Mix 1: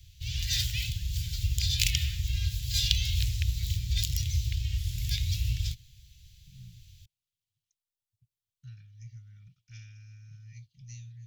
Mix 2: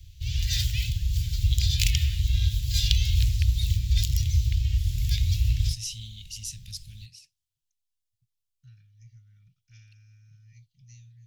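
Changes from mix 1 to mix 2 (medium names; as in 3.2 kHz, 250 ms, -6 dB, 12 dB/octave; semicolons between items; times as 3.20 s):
first voice: unmuted; second voice -5.5 dB; background: add bass shelf 120 Hz +8.5 dB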